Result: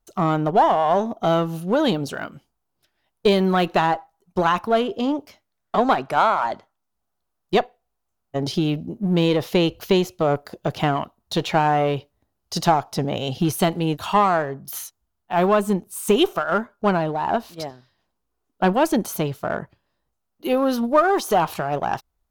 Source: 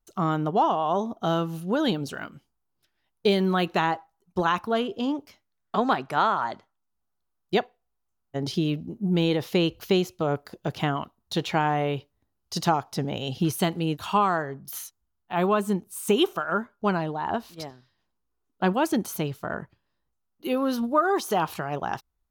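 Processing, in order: bell 630 Hz +5 dB 0.85 oct; in parallel at -4 dB: one-sided clip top -27.5 dBFS

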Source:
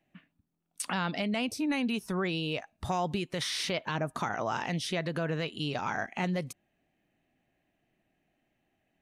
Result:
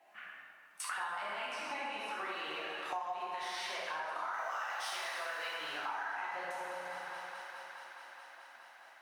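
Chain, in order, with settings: G.711 law mismatch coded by mu; 1.45–2.11 LPF 9500 Hz 12 dB/oct; 4.33–5.49 tilt +4 dB/oct; LFO high-pass saw up 4.1 Hz 760–1800 Hz; high shelf 2000 Hz -11.5 dB; thinning echo 0.211 s, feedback 84%, high-pass 250 Hz, level -19 dB; plate-style reverb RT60 2.2 s, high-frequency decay 0.65×, DRR -7.5 dB; compressor 5:1, threshold -40 dBFS, peak gain reduction 19 dB; gain +1.5 dB; Opus 64 kbps 48000 Hz

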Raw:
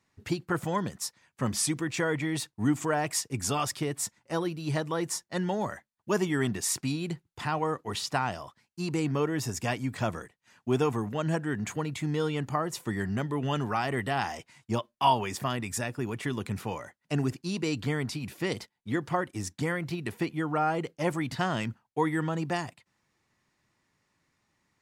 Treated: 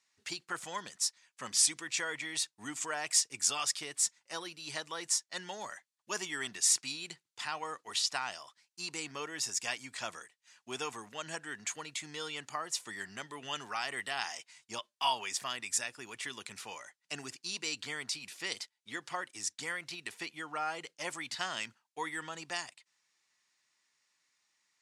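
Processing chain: weighting filter ITU-R 468; gain -8 dB

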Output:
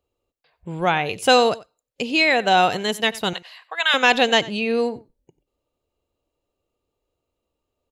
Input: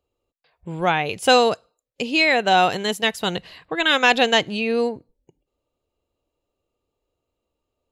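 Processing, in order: 3.33–3.94 HPF 720 Hz 24 dB/oct; on a send: echo 92 ms -19.5 dB

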